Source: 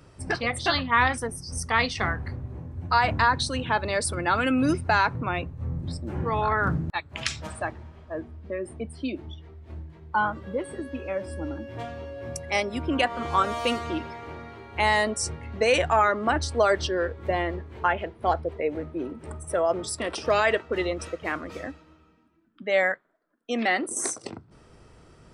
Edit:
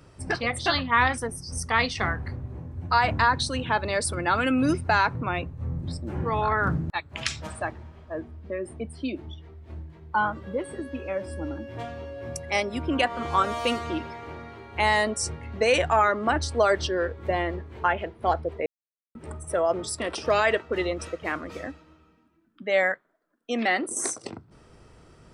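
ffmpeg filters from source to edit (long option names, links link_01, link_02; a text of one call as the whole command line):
ffmpeg -i in.wav -filter_complex "[0:a]asplit=3[link_01][link_02][link_03];[link_01]atrim=end=18.66,asetpts=PTS-STARTPTS,afade=type=out:start_time=18.656:duration=0.004:curve=hsin[link_04];[link_02]atrim=start=18.66:end=19.15,asetpts=PTS-STARTPTS,volume=0[link_05];[link_03]atrim=start=19.15,asetpts=PTS-STARTPTS,afade=type=in:duration=0.004:curve=hsin[link_06];[link_04][link_05][link_06]concat=n=3:v=0:a=1" out.wav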